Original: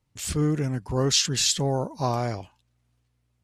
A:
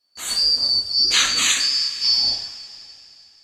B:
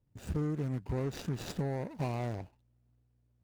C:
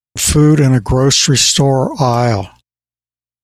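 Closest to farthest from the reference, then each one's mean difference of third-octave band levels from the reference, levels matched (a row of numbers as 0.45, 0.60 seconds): C, B, A; 2.5, 6.5, 14.5 decibels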